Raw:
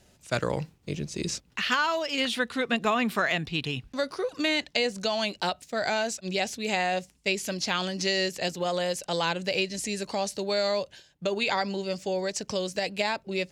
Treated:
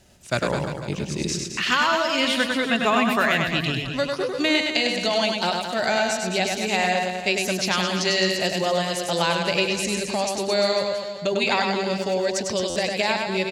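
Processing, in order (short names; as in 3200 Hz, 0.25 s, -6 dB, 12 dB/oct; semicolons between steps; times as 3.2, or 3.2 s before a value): notch 470 Hz, Q 12; reverse bouncing-ball echo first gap 0.1 s, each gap 1.15×, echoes 5; stuck buffer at 12.69, samples 512, times 5; gain +4 dB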